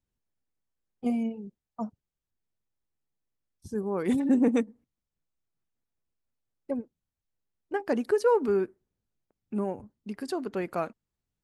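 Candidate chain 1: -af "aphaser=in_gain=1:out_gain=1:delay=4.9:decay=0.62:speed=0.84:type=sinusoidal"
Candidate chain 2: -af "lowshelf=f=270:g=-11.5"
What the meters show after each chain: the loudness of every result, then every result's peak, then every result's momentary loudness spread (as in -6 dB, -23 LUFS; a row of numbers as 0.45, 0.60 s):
-25.5, -33.5 LUFS; -6.0, -15.5 dBFS; 15, 16 LU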